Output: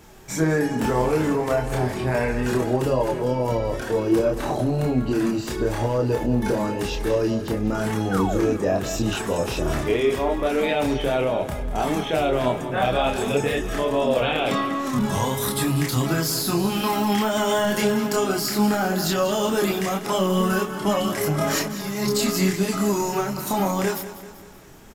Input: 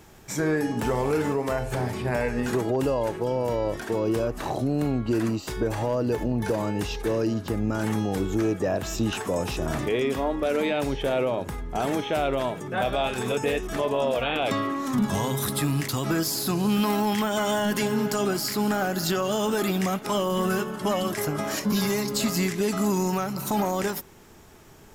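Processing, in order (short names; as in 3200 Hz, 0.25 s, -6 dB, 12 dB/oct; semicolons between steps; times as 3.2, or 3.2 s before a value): 8.11–8.55 painted sound fall 200–1600 Hz -31 dBFS; 21.38–22.11 negative-ratio compressor -28 dBFS, ratio -0.5; chorus voices 4, 0.29 Hz, delay 28 ms, depth 4.1 ms; on a send: feedback echo 0.194 s, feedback 51%, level -13.5 dB; on the sum: gain +6 dB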